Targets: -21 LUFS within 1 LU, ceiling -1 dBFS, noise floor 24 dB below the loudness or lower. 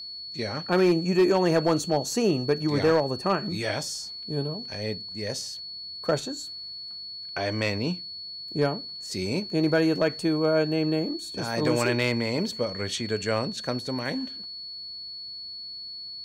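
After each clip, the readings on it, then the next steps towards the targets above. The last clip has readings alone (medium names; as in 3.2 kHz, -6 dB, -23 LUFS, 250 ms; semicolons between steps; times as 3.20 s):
clipped samples 0.3%; clipping level -14.5 dBFS; steady tone 4.4 kHz; tone level -36 dBFS; loudness -27.0 LUFS; peak level -14.5 dBFS; loudness target -21.0 LUFS
-> clip repair -14.5 dBFS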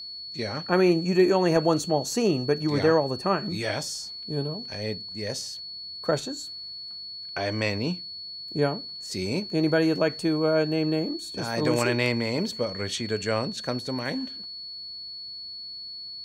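clipped samples 0.0%; steady tone 4.4 kHz; tone level -36 dBFS
-> band-stop 4.4 kHz, Q 30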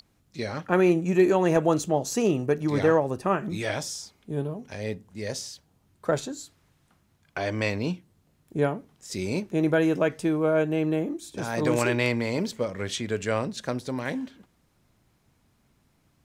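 steady tone not found; loudness -26.5 LUFS; peak level -7.5 dBFS; loudness target -21.0 LUFS
-> trim +5.5 dB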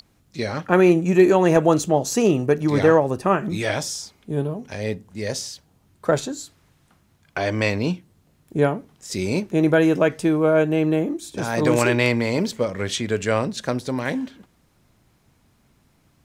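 loudness -21.0 LUFS; peak level -2.0 dBFS; noise floor -62 dBFS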